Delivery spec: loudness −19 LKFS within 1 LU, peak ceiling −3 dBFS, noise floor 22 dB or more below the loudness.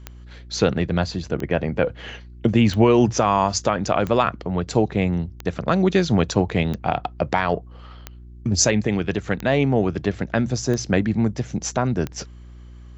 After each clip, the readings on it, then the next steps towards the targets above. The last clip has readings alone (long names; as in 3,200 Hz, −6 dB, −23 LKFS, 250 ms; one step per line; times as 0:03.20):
number of clicks 10; mains hum 60 Hz; hum harmonics up to 360 Hz; level of the hum −37 dBFS; integrated loudness −21.5 LKFS; sample peak −5.5 dBFS; target loudness −19.0 LKFS
→ click removal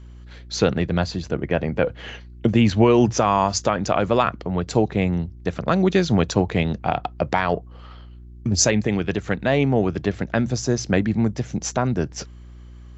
number of clicks 0; mains hum 60 Hz; hum harmonics up to 360 Hz; level of the hum −37 dBFS
→ hum removal 60 Hz, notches 6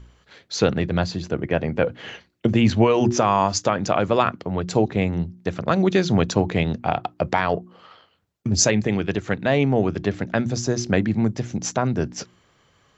mains hum none found; integrated loudness −22.0 LKFS; sample peak −4.5 dBFS; target loudness −19.0 LKFS
→ level +3 dB
brickwall limiter −3 dBFS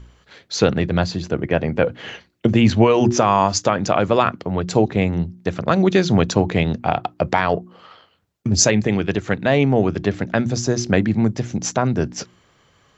integrated loudness −19.0 LKFS; sample peak −3.0 dBFS; background noise floor −59 dBFS